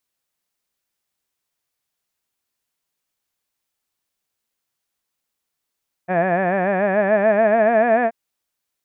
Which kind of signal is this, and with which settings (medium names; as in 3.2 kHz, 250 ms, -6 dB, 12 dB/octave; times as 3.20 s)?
formant-synthesis vowel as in had, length 2.03 s, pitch 174 Hz, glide +5.5 st, vibrato 6.9 Hz, vibrato depth 1.05 st